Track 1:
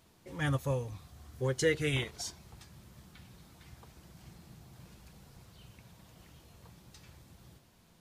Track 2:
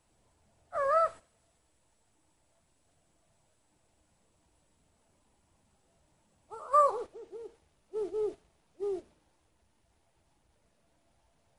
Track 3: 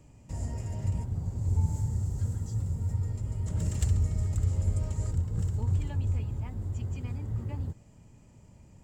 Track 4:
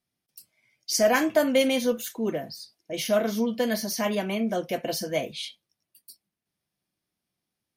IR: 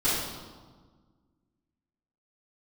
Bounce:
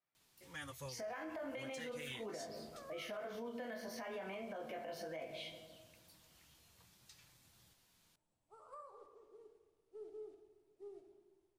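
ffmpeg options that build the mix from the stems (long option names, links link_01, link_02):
-filter_complex "[0:a]tiltshelf=frequency=1200:gain=-7,flanger=delay=6.4:depth=7.6:regen=-48:speed=0.56:shape=triangular,asoftclip=type=hard:threshold=-26.5dB,adelay=150,volume=-5.5dB[link_01];[1:a]acompressor=threshold=-35dB:ratio=5,adelay=2000,volume=-18dB,asplit=2[link_02][link_03];[link_03]volume=-17dB[link_04];[3:a]acrossover=split=550 2400:gain=0.224 1 0.112[link_05][link_06][link_07];[link_05][link_06][link_07]amix=inputs=3:normalize=0,acompressor=threshold=-28dB:ratio=6,flanger=delay=19:depth=3:speed=0.39,volume=1.5dB,asplit=2[link_08][link_09];[link_09]volume=-21dB[link_10];[4:a]atrim=start_sample=2205[link_11];[link_04][link_10]amix=inputs=2:normalize=0[link_12];[link_12][link_11]afir=irnorm=-1:irlink=0[link_13];[link_01][link_02][link_08][link_13]amix=inputs=4:normalize=0,alimiter=level_in=13.5dB:limit=-24dB:level=0:latency=1:release=136,volume=-13.5dB"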